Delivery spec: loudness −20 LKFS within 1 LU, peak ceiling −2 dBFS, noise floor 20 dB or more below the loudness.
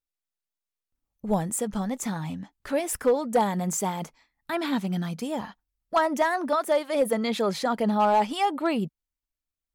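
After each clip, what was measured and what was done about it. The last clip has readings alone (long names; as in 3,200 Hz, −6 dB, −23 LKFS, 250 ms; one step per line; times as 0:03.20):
share of clipped samples 0.3%; peaks flattened at −14.5 dBFS; integrated loudness −26.5 LKFS; sample peak −14.5 dBFS; target loudness −20.0 LKFS
→ clipped peaks rebuilt −14.5 dBFS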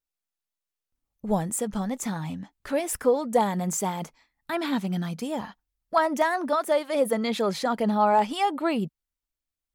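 share of clipped samples 0.0%; integrated loudness −26.5 LKFS; sample peak −9.5 dBFS; target loudness −20.0 LKFS
→ level +6.5 dB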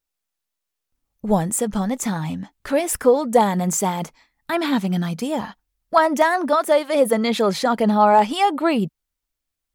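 integrated loudness −20.0 LKFS; sample peak −3.0 dBFS; background noise floor −82 dBFS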